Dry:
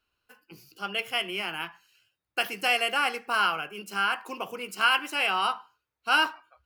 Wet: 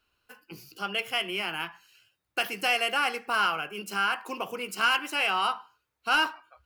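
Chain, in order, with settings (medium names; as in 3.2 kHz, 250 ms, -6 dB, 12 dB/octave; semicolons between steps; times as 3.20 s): in parallel at -1 dB: compression, threshold -40 dBFS, peak gain reduction 20.5 dB; on the sum: saturation -13 dBFS, distortion -21 dB; trim -1 dB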